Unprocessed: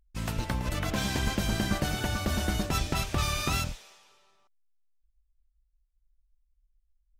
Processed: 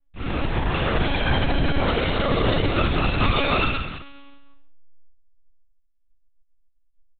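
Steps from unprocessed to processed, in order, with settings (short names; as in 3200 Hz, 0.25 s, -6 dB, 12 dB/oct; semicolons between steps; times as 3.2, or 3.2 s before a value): on a send: feedback echo 0.148 s, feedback 23%, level -8 dB; on the sum: Schroeder reverb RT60 0.73 s, combs from 29 ms, DRR -8 dB; monotone LPC vocoder at 8 kHz 280 Hz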